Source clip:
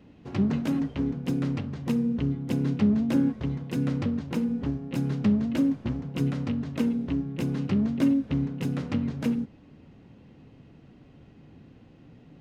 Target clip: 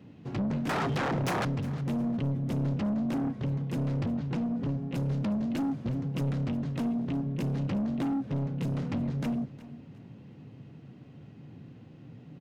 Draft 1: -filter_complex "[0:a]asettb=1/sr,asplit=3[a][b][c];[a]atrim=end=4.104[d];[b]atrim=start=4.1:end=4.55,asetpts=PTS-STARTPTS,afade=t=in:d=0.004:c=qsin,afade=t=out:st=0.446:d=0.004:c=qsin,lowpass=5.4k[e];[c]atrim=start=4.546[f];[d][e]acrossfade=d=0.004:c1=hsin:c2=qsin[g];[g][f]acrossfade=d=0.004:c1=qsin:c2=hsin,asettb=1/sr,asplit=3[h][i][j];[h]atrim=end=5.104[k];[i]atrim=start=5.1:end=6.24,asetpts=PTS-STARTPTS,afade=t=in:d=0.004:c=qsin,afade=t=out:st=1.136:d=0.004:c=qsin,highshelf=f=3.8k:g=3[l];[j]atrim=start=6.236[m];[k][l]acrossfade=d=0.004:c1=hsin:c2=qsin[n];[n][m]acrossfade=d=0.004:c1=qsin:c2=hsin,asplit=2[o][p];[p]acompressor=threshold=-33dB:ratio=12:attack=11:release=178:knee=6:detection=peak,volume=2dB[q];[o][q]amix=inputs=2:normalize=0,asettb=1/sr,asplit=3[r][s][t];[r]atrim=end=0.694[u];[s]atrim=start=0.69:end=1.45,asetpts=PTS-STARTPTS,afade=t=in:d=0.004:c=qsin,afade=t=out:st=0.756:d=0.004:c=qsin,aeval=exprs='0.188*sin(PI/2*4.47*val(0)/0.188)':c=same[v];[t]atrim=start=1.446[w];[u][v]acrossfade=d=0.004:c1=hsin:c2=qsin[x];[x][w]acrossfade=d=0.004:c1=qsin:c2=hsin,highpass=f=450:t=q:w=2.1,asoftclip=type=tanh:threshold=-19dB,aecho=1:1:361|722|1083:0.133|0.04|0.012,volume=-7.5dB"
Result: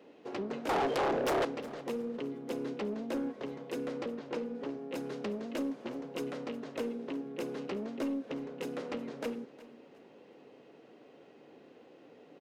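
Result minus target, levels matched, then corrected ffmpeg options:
125 Hz band -16.0 dB; compressor: peak gain reduction +8 dB
-filter_complex "[0:a]asettb=1/sr,asplit=3[a][b][c];[a]atrim=end=4.104[d];[b]atrim=start=4.1:end=4.55,asetpts=PTS-STARTPTS,afade=t=in:d=0.004:c=qsin,afade=t=out:st=0.446:d=0.004:c=qsin,lowpass=5.4k[e];[c]atrim=start=4.546[f];[d][e]acrossfade=d=0.004:c1=hsin:c2=qsin[g];[g][f]acrossfade=d=0.004:c1=qsin:c2=hsin,asettb=1/sr,asplit=3[h][i][j];[h]atrim=end=5.104[k];[i]atrim=start=5.1:end=6.24,asetpts=PTS-STARTPTS,afade=t=in:d=0.004:c=qsin,afade=t=out:st=1.136:d=0.004:c=qsin,highshelf=f=3.8k:g=3[l];[j]atrim=start=6.236[m];[k][l]acrossfade=d=0.004:c1=hsin:c2=qsin[n];[n][m]acrossfade=d=0.004:c1=qsin:c2=hsin,asplit=2[o][p];[p]acompressor=threshold=-24.5dB:ratio=12:attack=11:release=178:knee=6:detection=peak,volume=2dB[q];[o][q]amix=inputs=2:normalize=0,asettb=1/sr,asplit=3[r][s][t];[r]atrim=end=0.694[u];[s]atrim=start=0.69:end=1.45,asetpts=PTS-STARTPTS,afade=t=in:d=0.004:c=qsin,afade=t=out:st=0.756:d=0.004:c=qsin,aeval=exprs='0.188*sin(PI/2*4.47*val(0)/0.188)':c=same[v];[t]atrim=start=1.446[w];[u][v]acrossfade=d=0.004:c1=hsin:c2=qsin[x];[x][w]acrossfade=d=0.004:c1=qsin:c2=hsin,highpass=f=120:t=q:w=2.1,asoftclip=type=tanh:threshold=-19dB,aecho=1:1:361|722|1083:0.133|0.04|0.012,volume=-7.5dB"

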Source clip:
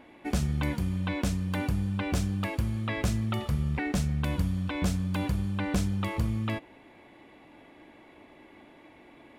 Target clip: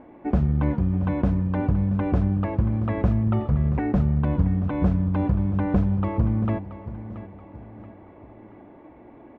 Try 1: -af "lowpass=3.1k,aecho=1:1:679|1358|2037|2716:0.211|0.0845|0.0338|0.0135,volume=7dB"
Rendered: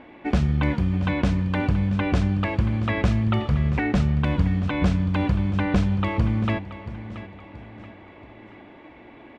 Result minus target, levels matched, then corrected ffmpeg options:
4000 Hz band +17.0 dB
-af "lowpass=990,aecho=1:1:679|1358|2037|2716:0.211|0.0845|0.0338|0.0135,volume=7dB"

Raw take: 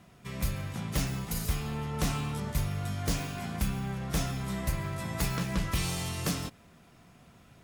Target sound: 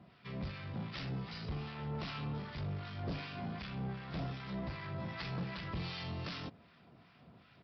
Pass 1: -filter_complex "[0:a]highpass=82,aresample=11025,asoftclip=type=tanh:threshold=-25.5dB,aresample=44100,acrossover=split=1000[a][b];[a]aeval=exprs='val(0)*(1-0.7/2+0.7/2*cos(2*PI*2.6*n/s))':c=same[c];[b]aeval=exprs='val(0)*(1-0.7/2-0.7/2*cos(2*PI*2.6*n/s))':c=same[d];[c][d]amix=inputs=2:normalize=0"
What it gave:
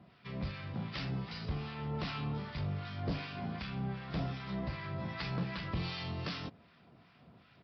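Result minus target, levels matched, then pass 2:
soft clip: distortion -8 dB
-filter_complex "[0:a]highpass=82,aresample=11025,asoftclip=type=tanh:threshold=-33dB,aresample=44100,acrossover=split=1000[a][b];[a]aeval=exprs='val(0)*(1-0.7/2+0.7/2*cos(2*PI*2.6*n/s))':c=same[c];[b]aeval=exprs='val(0)*(1-0.7/2-0.7/2*cos(2*PI*2.6*n/s))':c=same[d];[c][d]amix=inputs=2:normalize=0"

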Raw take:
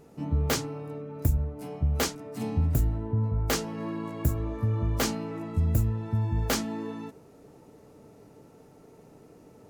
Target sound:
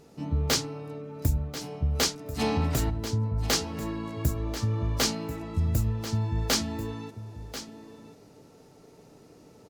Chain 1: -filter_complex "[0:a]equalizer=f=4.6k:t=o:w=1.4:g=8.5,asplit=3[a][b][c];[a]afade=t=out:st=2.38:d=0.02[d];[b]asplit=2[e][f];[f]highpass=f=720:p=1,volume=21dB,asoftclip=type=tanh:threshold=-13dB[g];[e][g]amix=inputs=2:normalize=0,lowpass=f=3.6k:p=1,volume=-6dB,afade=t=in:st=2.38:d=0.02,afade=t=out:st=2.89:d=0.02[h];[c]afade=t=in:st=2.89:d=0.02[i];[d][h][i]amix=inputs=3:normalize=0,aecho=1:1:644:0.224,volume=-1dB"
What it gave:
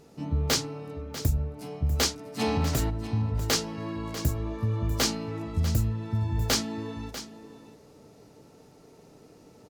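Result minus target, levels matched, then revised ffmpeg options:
echo 0.395 s early
-filter_complex "[0:a]equalizer=f=4.6k:t=o:w=1.4:g=8.5,asplit=3[a][b][c];[a]afade=t=out:st=2.38:d=0.02[d];[b]asplit=2[e][f];[f]highpass=f=720:p=1,volume=21dB,asoftclip=type=tanh:threshold=-13dB[g];[e][g]amix=inputs=2:normalize=0,lowpass=f=3.6k:p=1,volume=-6dB,afade=t=in:st=2.38:d=0.02,afade=t=out:st=2.89:d=0.02[h];[c]afade=t=in:st=2.89:d=0.02[i];[d][h][i]amix=inputs=3:normalize=0,aecho=1:1:1039:0.224,volume=-1dB"

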